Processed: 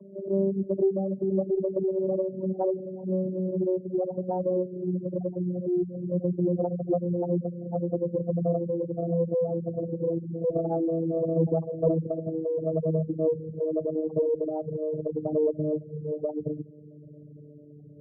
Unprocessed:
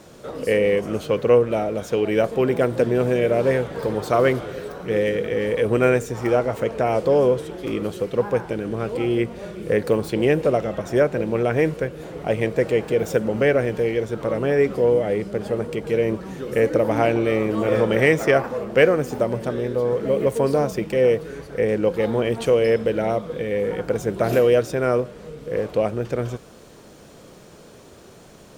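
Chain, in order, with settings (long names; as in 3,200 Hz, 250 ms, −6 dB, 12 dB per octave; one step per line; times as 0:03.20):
vocoder with a gliding carrier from G3, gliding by −5 semitones
gate on every frequency bin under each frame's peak −10 dB strong
in parallel at +2 dB: downward compressor, threshold −32 dBFS, peak gain reduction 19.5 dB
on the sum: harmonic generator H 2 −26 dB, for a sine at −4 dBFS
phase-vocoder stretch with locked phases 0.63×
level −7.5 dB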